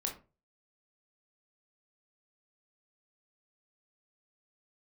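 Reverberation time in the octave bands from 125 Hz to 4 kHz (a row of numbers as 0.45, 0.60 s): 0.45, 0.35, 0.35, 0.30, 0.25, 0.20 s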